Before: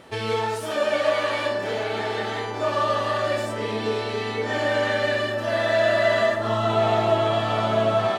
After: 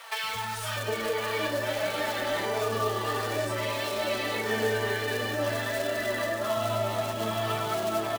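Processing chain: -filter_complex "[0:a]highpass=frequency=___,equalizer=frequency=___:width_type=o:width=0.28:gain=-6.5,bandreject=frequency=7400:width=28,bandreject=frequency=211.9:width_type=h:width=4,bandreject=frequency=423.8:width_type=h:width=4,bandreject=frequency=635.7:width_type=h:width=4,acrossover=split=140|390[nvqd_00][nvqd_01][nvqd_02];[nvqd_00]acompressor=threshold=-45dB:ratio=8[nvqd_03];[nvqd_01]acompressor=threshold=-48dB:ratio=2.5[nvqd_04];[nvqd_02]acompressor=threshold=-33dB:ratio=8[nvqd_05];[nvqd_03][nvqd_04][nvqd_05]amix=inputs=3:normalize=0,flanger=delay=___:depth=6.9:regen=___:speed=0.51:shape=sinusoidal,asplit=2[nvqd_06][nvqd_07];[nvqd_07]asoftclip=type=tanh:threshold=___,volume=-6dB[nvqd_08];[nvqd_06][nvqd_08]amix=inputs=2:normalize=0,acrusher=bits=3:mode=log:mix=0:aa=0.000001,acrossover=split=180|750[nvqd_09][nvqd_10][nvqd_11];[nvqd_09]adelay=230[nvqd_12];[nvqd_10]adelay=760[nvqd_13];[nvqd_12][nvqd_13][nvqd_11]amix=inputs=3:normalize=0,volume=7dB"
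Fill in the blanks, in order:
54, 100, 4.3, 28, -35dB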